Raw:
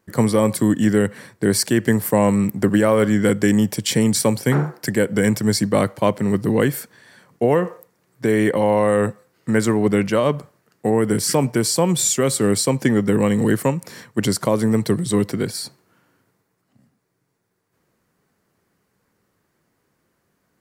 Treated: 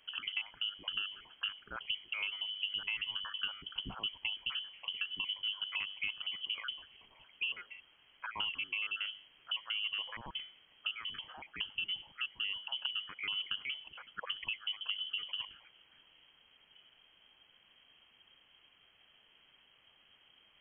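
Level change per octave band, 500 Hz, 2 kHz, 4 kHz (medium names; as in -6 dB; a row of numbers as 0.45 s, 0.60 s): under -40 dB, -11.0 dB, -4.0 dB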